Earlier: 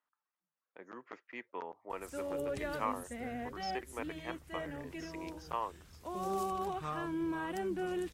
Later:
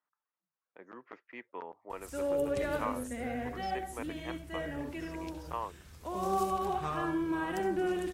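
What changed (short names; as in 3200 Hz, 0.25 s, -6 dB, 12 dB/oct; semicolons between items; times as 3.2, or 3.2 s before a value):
speech: add air absorption 130 m; reverb: on, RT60 0.45 s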